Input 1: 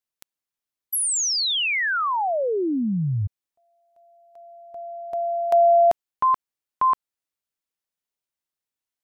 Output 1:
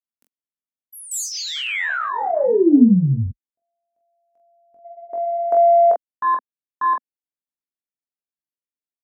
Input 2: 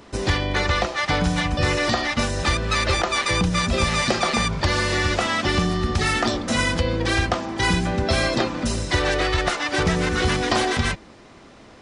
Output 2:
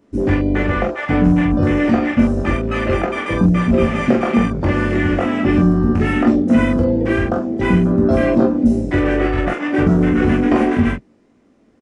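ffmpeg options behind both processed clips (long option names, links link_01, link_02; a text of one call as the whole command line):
ffmpeg -i in.wav -filter_complex "[0:a]afwtdn=0.0631,equalizer=frequency=250:width_type=o:width=1:gain=11,equalizer=frequency=500:width_type=o:width=1:gain=3,equalizer=frequency=1000:width_type=o:width=1:gain=-4,equalizer=frequency=4000:width_type=o:width=1:gain=-7,asplit=2[link_01][link_02];[link_02]aecho=0:1:21|44:0.631|0.596[link_03];[link_01][link_03]amix=inputs=2:normalize=0" out.wav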